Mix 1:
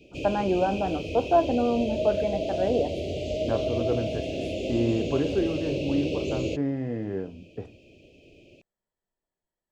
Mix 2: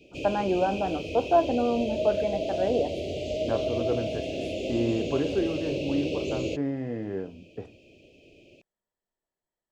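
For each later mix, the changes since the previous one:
master: add low-shelf EQ 190 Hz −5 dB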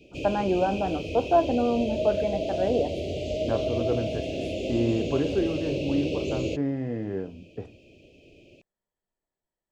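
master: add low-shelf EQ 190 Hz +5 dB

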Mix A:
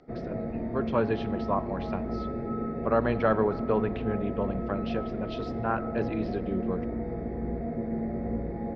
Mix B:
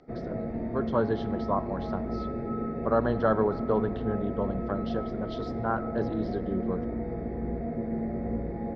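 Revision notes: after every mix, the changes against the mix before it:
speech: add Butterworth band-reject 2,300 Hz, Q 1.6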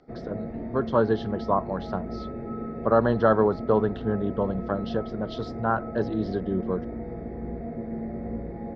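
speech +8.0 dB
reverb: off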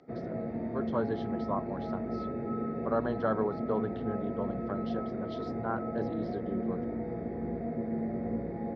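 speech −10.0 dB
master: add high-pass filter 100 Hz 12 dB per octave

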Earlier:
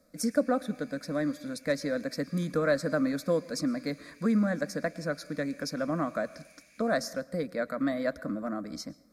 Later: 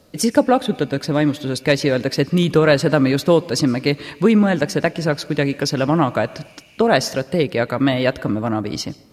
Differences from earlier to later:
speech +10.5 dB
master: remove phaser with its sweep stopped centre 580 Hz, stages 8

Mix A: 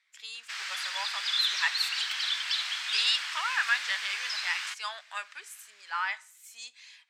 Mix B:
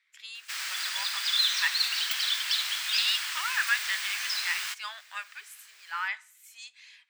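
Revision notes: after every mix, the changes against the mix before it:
speech: add resonant band-pass 2,000 Hz, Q 0.86
master: remove high-frequency loss of the air 76 metres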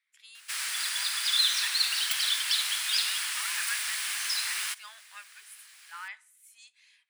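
speech −9.5 dB
master: add parametric band 9,800 Hz +14 dB 0.36 octaves

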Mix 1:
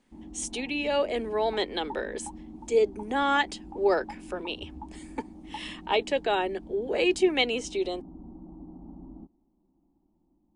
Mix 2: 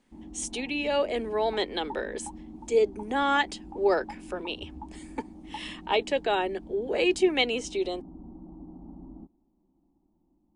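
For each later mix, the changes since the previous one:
nothing changed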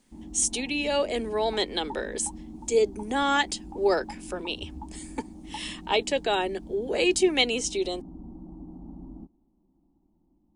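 master: add bass and treble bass +4 dB, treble +11 dB

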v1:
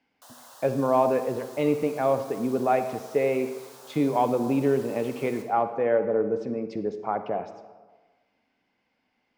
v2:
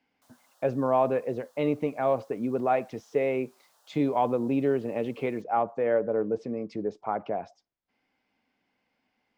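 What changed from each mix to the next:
background −11.0 dB
reverb: off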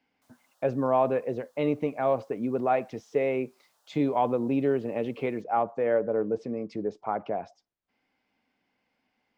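background −5.0 dB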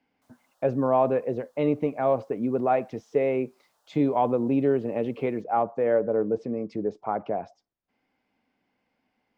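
master: add tilt shelving filter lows +3 dB, about 1,400 Hz

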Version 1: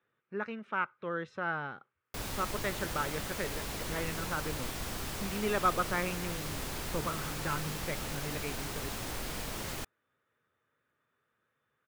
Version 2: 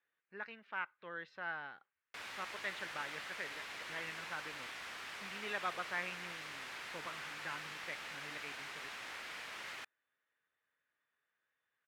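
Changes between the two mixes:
speech: remove loudspeaker in its box 150–9,800 Hz, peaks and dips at 180 Hz −5 dB, 290 Hz −5 dB, 730 Hz −3 dB, 1,300 Hz +9 dB, 2,300 Hz +4 dB, 4,600 Hz −10 dB
master: add resonant band-pass 2,000 Hz, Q 1.3

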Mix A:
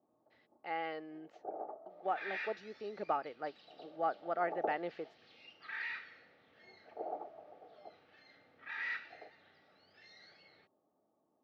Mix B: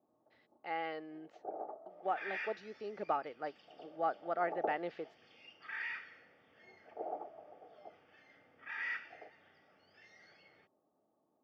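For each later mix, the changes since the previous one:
second sound: add Butterworth band-reject 4,000 Hz, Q 4.3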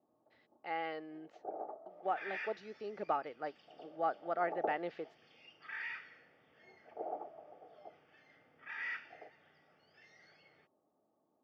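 reverb: off

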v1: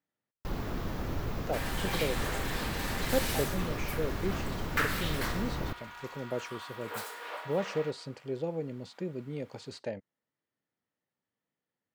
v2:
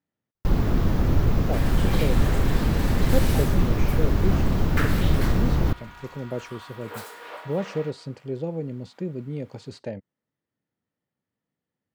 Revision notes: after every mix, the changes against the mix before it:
first sound +6.0 dB
master: add low-shelf EQ 330 Hz +10 dB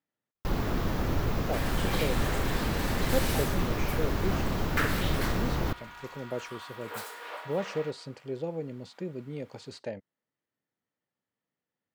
master: add low-shelf EQ 330 Hz −10 dB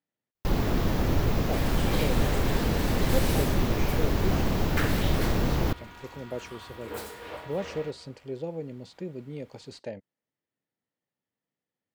first sound +4.0 dB
second sound: remove high-pass filter 630 Hz 12 dB per octave
master: add parametric band 1,300 Hz −4 dB 0.98 octaves

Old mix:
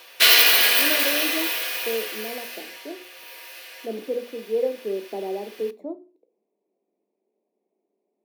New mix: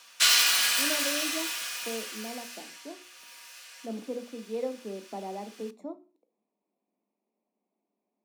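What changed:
background −9.0 dB
master: add drawn EQ curve 250 Hz 0 dB, 390 Hz −13 dB, 1,300 Hz +6 dB, 1,900 Hz −1 dB, 4,100 Hz +3 dB, 7,400 Hz +13 dB, 14,000 Hz −5 dB

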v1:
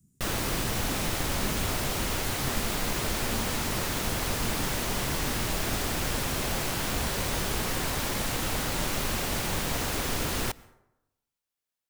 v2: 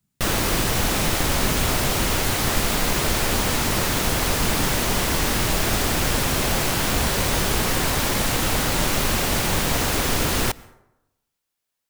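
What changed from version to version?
speech −11.0 dB
background +8.0 dB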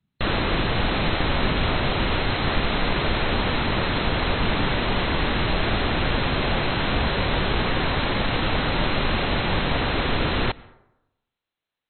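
master: add linear-phase brick-wall low-pass 4,200 Hz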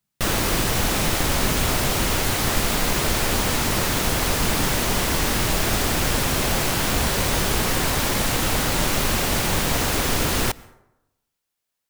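speech −10.5 dB
master: remove linear-phase brick-wall low-pass 4,200 Hz

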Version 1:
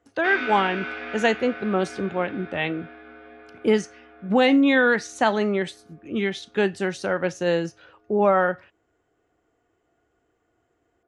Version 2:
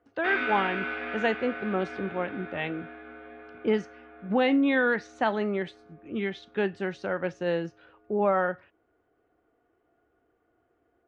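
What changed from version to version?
speech −5.5 dB
master: add low-pass filter 3,200 Hz 12 dB per octave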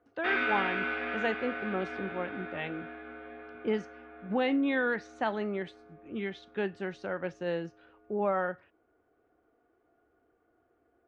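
speech −5.0 dB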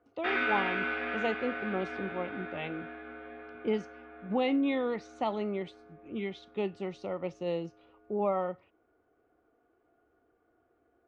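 speech: add Butterworth band-reject 1,600 Hz, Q 2.2

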